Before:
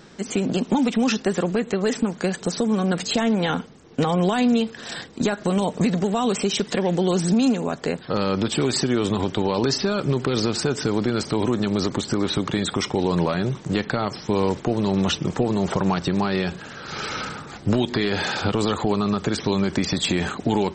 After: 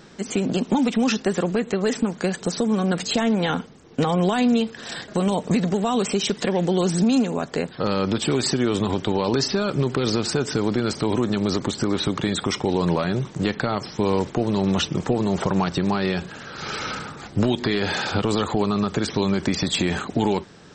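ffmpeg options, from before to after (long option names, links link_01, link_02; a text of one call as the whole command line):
ffmpeg -i in.wav -filter_complex "[0:a]asplit=2[link_01][link_02];[link_01]atrim=end=5.082[link_03];[link_02]atrim=start=5.378[link_04];[link_03][link_04]acrossfade=duration=0.004:curve1=hsin:curve2=hsin" out.wav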